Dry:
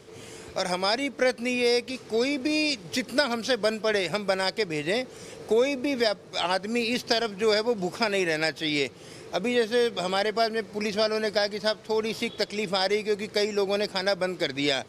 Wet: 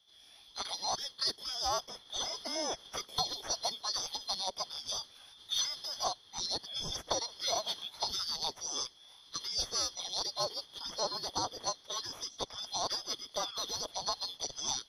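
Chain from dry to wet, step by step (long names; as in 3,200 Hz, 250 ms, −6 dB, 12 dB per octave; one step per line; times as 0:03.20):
neighbouring bands swapped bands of 4,000 Hz
dynamic equaliser 4,000 Hz, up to −6 dB, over −37 dBFS, Q 3.3
formants moved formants −4 semitones
multiband upward and downward expander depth 40%
level −8 dB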